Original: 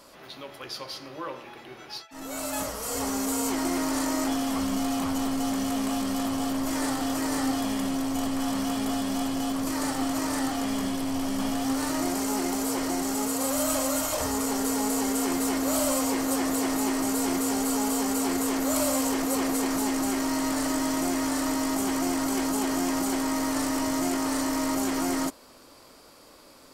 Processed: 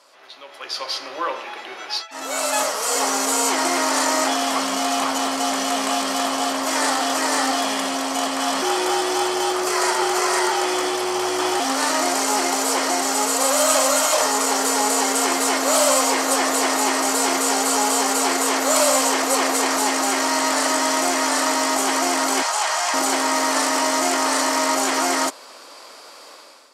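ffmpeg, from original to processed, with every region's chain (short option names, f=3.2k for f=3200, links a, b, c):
-filter_complex "[0:a]asettb=1/sr,asplit=3[a][b][c];[a]atrim=end=8.624[d];[b]atrim=start=8.62:end=11.6,asetpts=PTS-STARTPTS,afade=t=in:d=0.004:c=qsin,afade=t=out:st=2.976:d=0.004:c=qsin,bandreject=f=3.5k:w=16,afreqshift=97[e];[c]atrim=start=11.596[f];[d][e]acrossfade=d=0.004:c1=hsin:c2=qsin[g];[g][f]acrossfade=d=0.004:c1=qsin:c2=hsin,asettb=1/sr,asplit=3[h][i][j];[h]atrim=end=22.424[k];[i]atrim=start=22.42:end=22.94,asetpts=PTS-STARTPTS,afade=t=in:d=0.004:c=qsin,afade=t=out:st=0.516:d=0.004:c=qsin,highpass=f=650:w=0.5412,highpass=f=650:w=1.3066,acrossover=split=9700[l][m];[m]acompressor=threshold=-52dB:ratio=4:attack=1:release=60[n];[l][n]amix=inputs=2:normalize=0[o];[j]atrim=start=22.936[p];[k][o]acrossfade=d=0.004:c1=hsin:c2=qsin[q];[q][p]acrossfade=d=0.004:c1=qsin:c2=hsin,lowpass=8.6k,dynaudnorm=f=470:g=3:m=13dB,highpass=580"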